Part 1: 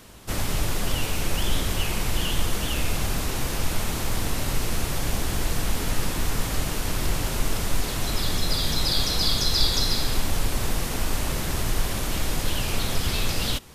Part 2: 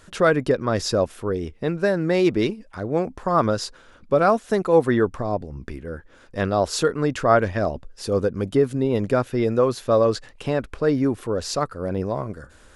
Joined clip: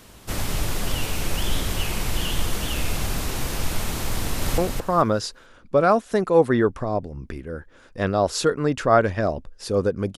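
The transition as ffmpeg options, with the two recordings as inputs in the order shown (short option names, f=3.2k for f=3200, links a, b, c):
-filter_complex "[0:a]apad=whole_dur=10.17,atrim=end=10.17,atrim=end=4.582[a];[1:a]atrim=start=2.958:end=8.55[b];[a][b]acrossfade=d=0.004:c1=hsin:c2=hsin,asplit=2[c][d];[d]afade=t=in:st=4.19:d=0.01,afade=t=out:st=4.58:d=0.01,aecho=0:1:220|440|660|880:0.668344|0.167086|0.0417715|0.0104429[e];[c][e]amix=inputs=2:normalize=0"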